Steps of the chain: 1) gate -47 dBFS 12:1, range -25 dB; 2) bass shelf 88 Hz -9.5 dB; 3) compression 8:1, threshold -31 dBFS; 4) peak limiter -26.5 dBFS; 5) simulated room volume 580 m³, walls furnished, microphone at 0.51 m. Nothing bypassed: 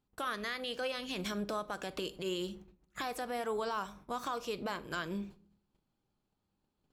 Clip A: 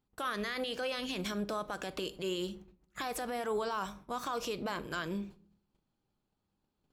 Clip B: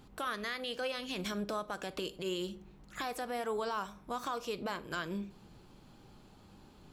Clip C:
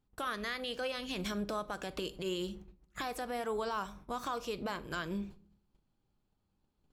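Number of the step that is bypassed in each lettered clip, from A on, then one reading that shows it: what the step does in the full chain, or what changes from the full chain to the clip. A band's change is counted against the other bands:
3, mean gain reduction 6.0 dB; 1, momentary loudness spread change +1 LU; 2, 125 Hz band +2.0 dB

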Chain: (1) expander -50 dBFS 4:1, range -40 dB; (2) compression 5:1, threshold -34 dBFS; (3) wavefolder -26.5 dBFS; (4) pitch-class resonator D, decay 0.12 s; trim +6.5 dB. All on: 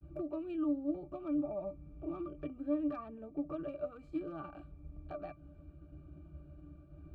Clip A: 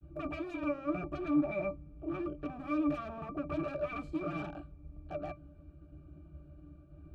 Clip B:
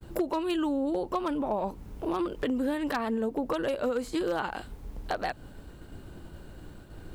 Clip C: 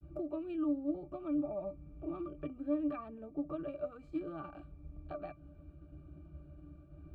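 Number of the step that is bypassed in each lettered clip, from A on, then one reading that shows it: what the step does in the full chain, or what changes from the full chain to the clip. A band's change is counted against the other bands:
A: 2, mean gain reduction 7.0 dB; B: 4, 2 kHz band +13.0 dB; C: 3, distortion -23 dB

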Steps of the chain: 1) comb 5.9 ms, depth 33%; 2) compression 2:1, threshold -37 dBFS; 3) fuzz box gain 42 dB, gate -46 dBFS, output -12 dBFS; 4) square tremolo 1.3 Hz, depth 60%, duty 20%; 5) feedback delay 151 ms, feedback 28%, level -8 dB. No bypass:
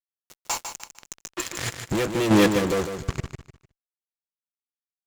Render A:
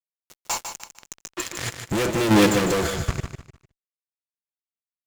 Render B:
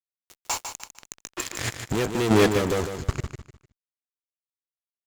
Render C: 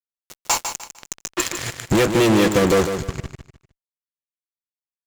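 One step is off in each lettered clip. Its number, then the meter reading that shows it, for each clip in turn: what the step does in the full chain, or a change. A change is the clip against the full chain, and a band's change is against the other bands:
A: 2, mean gain reduction 7.0 dB; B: 1, 250 Hz band -2.5 dB; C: 4, momentary loudness spread change -4 LU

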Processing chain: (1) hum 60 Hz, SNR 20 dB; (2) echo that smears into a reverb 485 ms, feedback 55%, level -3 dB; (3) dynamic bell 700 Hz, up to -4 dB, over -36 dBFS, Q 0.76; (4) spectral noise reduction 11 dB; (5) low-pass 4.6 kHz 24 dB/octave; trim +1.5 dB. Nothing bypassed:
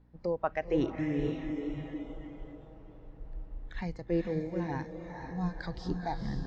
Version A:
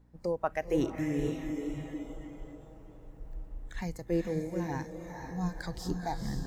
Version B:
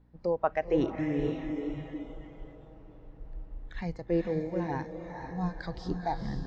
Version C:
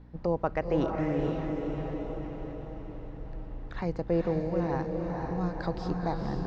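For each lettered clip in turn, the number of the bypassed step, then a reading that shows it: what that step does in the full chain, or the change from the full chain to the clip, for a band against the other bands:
5, 4 kHz band +2.0 dB; 3, 1 kHz band +2.5 dB; 4, 4 kHz band -4.0 dB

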